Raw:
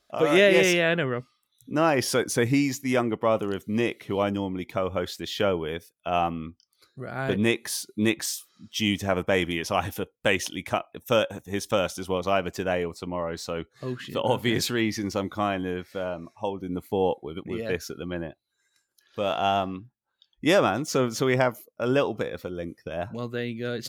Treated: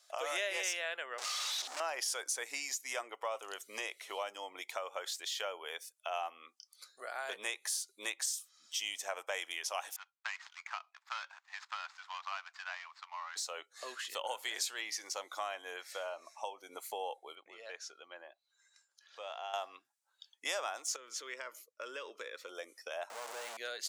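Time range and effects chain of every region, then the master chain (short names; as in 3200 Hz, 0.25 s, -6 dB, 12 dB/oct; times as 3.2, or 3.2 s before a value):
1.18–1.8 delta modulation 32 kbps, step -21.5 dBFS + HPF 190 Hz 24 dB/oct + hard clip -28 dBFS
9.96–13.36 median filter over 15 samples + inverse Chebyshev high-pass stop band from 510 Hz + air absorption 200 m
17.35–19.54 compressor 1.5:1, threshold -59 dBFS + air absorption 98 m
20.96–22.49 LPF 2200 Hz 6 dB/oct + compressor 4:1, threshold -26 dBFS + fixed phaser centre 310 Hz, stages 4
23.1–23.57 infinite clipping + de-esser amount 95%
whole clip: HPF 620 Hz 24 dB/oct; bell 7600 Hz +11.5 dB 1.3 oct; compressor 2.5:1, threshold -41 dBFS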